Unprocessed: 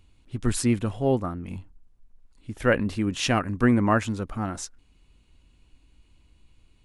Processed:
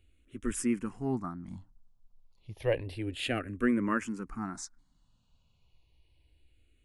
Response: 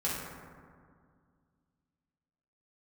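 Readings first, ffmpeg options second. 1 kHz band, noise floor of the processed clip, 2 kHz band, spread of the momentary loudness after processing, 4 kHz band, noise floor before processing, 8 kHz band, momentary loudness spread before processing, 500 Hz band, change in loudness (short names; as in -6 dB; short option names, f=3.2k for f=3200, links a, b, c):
-10.0 dB, -70 dBFS, -8.0 dB, 16 LU, -8.0 dB, -61 dBFS, -7.5 dB, 17 LU, -8.0 dB, -8.0 dB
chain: -filter_complex "[0:a]asplit=2[a][b];[b]afreqshift=-0.3[c];[a][c]amix=inputs=2:normalize=1,volume=-5.5dB"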